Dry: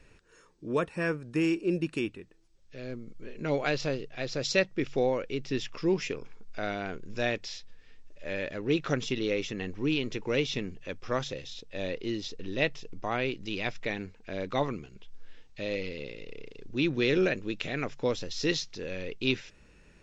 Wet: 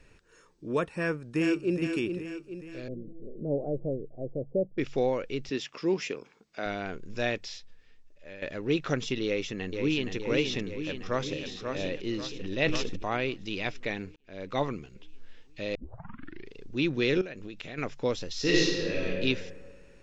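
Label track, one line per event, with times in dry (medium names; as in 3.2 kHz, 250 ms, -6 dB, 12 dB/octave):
0.980000	1.770000	echo throw 420 ms, feedback 50%, level -6.5 dB
2.880000	4.780000	steep low-pass 640 Hz
5.490000	6.660000	high-pass 190 Hz
7.360000	8.420000	fade out, to -13 dB
9.250000	10.130000	echo throw 470 ms, feedback 70%, level -5.5 dB
10.730000	11.340000	echo throw 540 ms, feedback 40%, level -5.5 dB
12.310000	13.170000	decay stretcher at most 23 dB/s
14.160000	14.610000	fade in
15.750000	15.750000	tape start 0.79 s
17.210000	17.780000	compression 8:1, threshold -36 dBFS
18.400000	19.090000	reverb throw, RT60 1.6 s, DRR -5 dB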